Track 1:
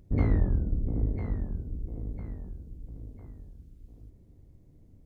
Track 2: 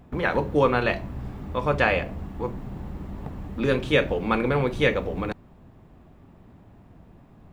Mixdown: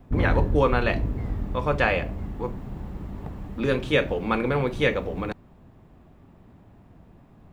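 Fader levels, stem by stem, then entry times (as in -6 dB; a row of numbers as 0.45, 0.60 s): +1.0, -1.0 dB; 0.00, 0.00 s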